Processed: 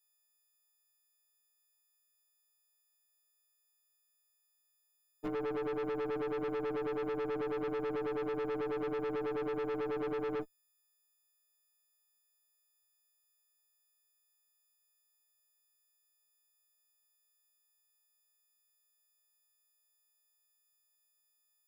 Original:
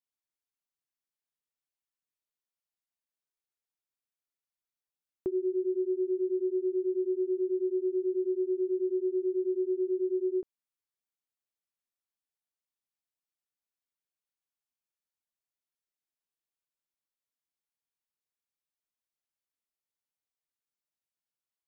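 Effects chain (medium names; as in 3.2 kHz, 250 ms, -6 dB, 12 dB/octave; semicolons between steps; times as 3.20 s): partials quantised in pitch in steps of 6 st; valve stage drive 39 dB, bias 0.75; trim +5.5 dB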